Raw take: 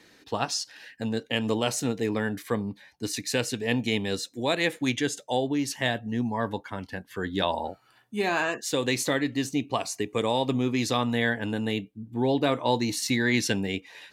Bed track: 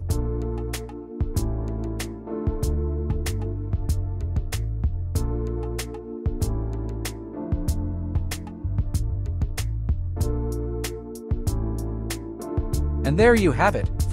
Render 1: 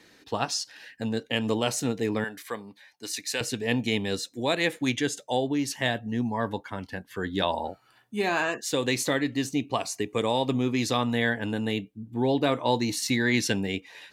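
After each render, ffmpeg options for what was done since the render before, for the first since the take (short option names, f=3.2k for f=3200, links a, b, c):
-filter_complex "[0:a]asettb=1/sr,asplit=3[a][b][c];[a]atrim=end=2.244[d];[b]atrim=start=2.24:end=3.41,asetpts=PTS-STARTPTS,afade=t=in:d=0.004:c=qsin,afade=t=out:st=1.166:d=0.004:c=qsin,highpass=f=890:p=1[e];[c]atrim=start=3.406[f];[d][e]acrossfade=d=0.004:c1=hsin:c2=qsin[g];[g][f]acrossfade=d=0.004:c1=qsin:c2=hsin"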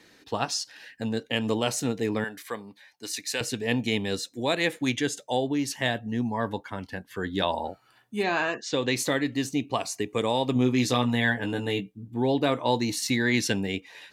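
-filter_complex "[0:a]asettb=1/sr,asplit=3[a][b][c];[a]atrim=end=8.234[d];[b]atrim=start=8.23:end=8.96,asetpts=PTS-STARTPTS,afade=t=in:d=0.004:c=qsin,afade=t=out:st=0.726:d=0.004:c=qsin,lowpass=f=6.1k:w=0.5412,lowpass=f=6.1k:w=1.3066[e];[c]atrim=start=8.956[f];[d][e]acrossfade=d=0.004:c1=hsin:c2=qsin[g];[g][f]acrossfade=d=0.004:c1=qsin:c2=hsin,asettb=1/sr,asplit=3[h][i][j];[h]atrim=end=10.544[k];[i]atrim=start=10.54:end=12.08,asetpts=PTS-STARTPTS,afade=t=in:d=0.004:c=qsin,afade=t=out:st=1.536:d=0.004:c=qsin,asplit=2[l][m];[m]adelay=16,volume=-5dB[n];[l][n]amix=inputs=2:normalize=0,atrim=end_sample=67914[o];[j]atrim=start=12.076[p];[k][o]acrossfade=d=0.004:c1=hsin:c2=qsin[q];[q][p]acrossfade=d=0.004:c1=qsin:c2=hsin"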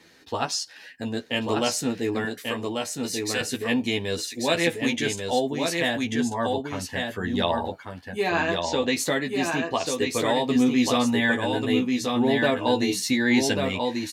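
-filter_complex "[0:a]asplit=2[a][b];[b]adelay=12,volume=-3.5dB[c];[a][c]amix=inputs=2:normalize=0,aecho=1:1:1140:0.631"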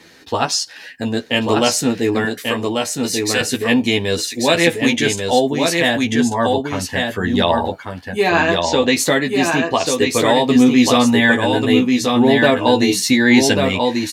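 -af "volume=9dB,alimiter=limit=-1dB:level=0:latency=1"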